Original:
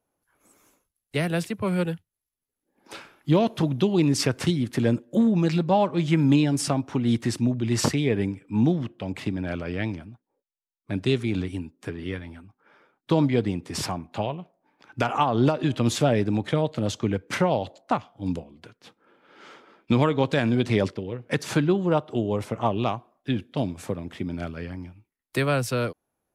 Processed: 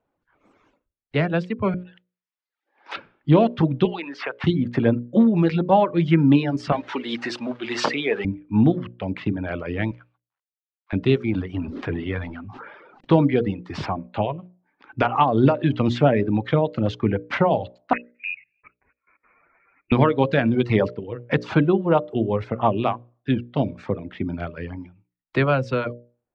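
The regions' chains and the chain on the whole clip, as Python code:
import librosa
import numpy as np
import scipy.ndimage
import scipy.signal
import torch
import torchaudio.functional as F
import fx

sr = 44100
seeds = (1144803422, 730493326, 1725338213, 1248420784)

y = fx.chain(x, sr, fx.over_compress(threshold_db=-37.0, ratio=-1.0),
    fx.highpass(hz=950.0, slope=12), at=(1.74, 2.96))
y = fx.chain(y, sr, fx.bandpass_edges(low_hz=760.0, high_hz=3300.0),
    fx.band_squash(depth_pct=70), at=(3.85, 4.44))
y = fx.chain(y, sr, fx.zero_step(step_db=-36.0),
    fx.highpass(hz=410.0, slope=12),
    fx.high_shelf(hz=2400.0, db=9.5), at=(6.72, 8.25))
y = fx.chain(y, sr, fx.cvsd(bps=64000),
    fx.highpass(hz=950.0, slope=24),
    fx.peak_eq(hz=8000.0, db=-12.5, octaves=0.94), at=(9.91, 10.93))
y = fx.chain(y, sr, fx.law_mismatch(coded='mu'),
    fx.lowpass(hz=7600.0, slope=12),
    fx.sustainer(db_per_s=29.0), at=(11.49, 13.16))
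y = fx.chain(y, sr, fx.level_steps(step_db=15),
    fx.env_flanger(rest_ms=11.7, full_db=-29.5),
    fx.freq_invert(carrier_hz=2700), at=(17.93, 19.92))
y = fx.dereverb_blind(y, sr, rt60_s=0.89)
y = scipy.signal.sosfilt(scipy.signal.bessel(4, 2500.0, 'lowpass', norm='mag', fs=sr, output='sos'), y)
y = fx.hum_notches(y, sr, base_hz=60, count=10)
y = y * 10.0 ** (5.5 / 20.0)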